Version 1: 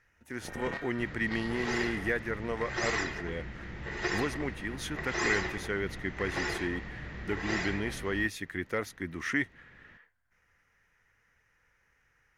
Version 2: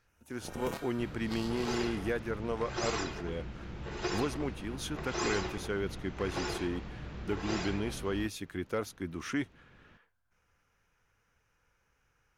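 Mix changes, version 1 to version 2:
first sound: remove low-pass 3.9 kHz 12 dB/octave; master: add peaking EQ 1.9 kHz -15 dB 0.33 oct

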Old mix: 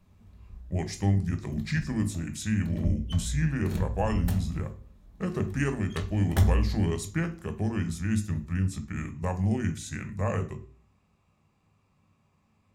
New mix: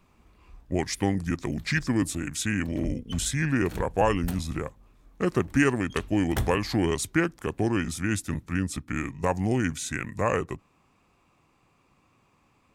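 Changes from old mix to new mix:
speech +7.0 dB; reverb: off

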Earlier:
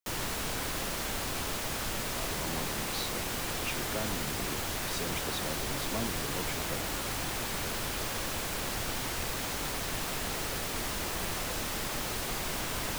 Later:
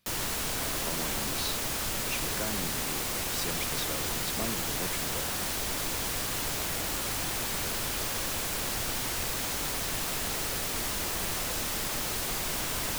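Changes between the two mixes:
speech: entry -1.55 s; master: add treble shelf 4.1 kHz +5.5 dB

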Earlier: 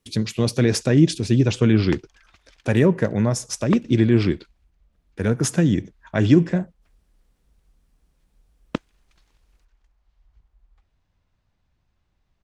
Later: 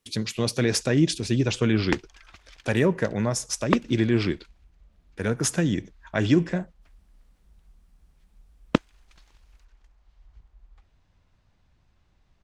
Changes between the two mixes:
speech: add bass shelf 480 Hz -7 dB; background +5.5 dB

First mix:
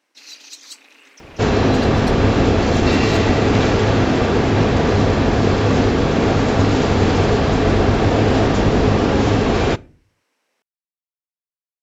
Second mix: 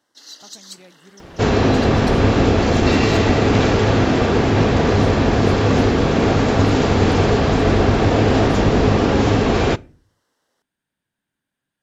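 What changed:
speech: unmuted; first sound: add Butterworth band-stop 2.4 kHz, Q 2.3

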